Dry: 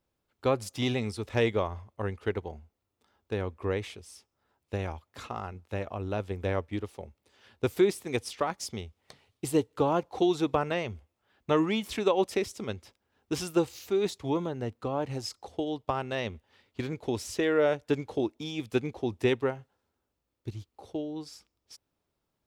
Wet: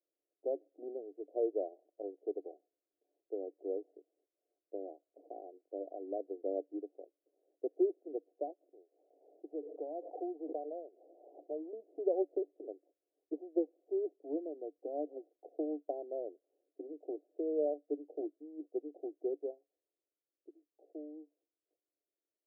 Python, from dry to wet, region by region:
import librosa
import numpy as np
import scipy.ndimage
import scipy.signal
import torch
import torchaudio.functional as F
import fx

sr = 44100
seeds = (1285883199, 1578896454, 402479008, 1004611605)

y = fx.chain(x, sr, fx.highpass(hz=1300.0, slope=6),
    fx.pre_swell(db_per_s=42.0), at=(8.73, 11.73))
y = fx.wiener(y, sr, points=25)
y = scipy.signal.sosfilt(scipy.signal.cheby1(5, 1.0, [290.0, 730.0], 'bandpass', fs=sr, output='sos'), y)
y = fx.rider(y, sr, range_db=10, speed_s=2.0)
y = y * librosa.db_to_amplitude(-7.0)